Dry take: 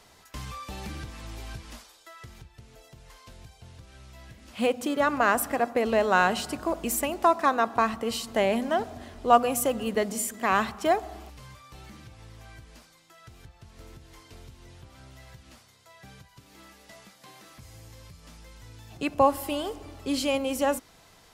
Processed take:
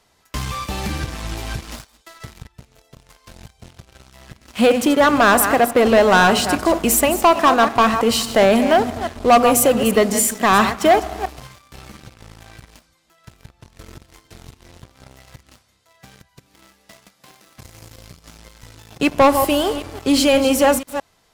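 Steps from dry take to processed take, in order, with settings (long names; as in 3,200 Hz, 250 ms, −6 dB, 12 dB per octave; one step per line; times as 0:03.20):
delay that plays each chunk backwards 168 ms, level −11.5 dB
leveller curve on the samples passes 3
level +1.5 dB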